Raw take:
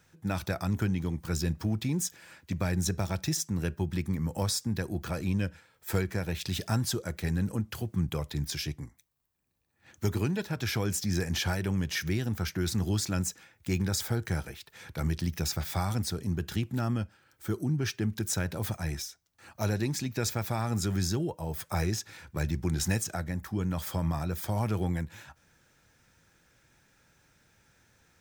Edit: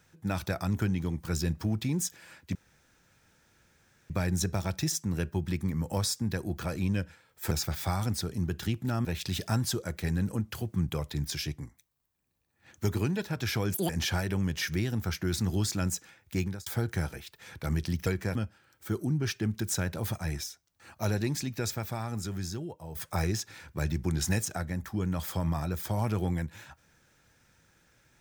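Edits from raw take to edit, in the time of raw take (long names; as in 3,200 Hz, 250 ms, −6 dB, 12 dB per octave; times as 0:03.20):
0:02.55: splice in room tone 1.55 s
0:05.96–0:06.25: swap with 0:15.40–0:16.94
0:10.94–0:11.23: play speed 190%
0:13.70–0:14.00: fade out
0:19.92–0:21.54: fade out quadratic, to −7.5 dB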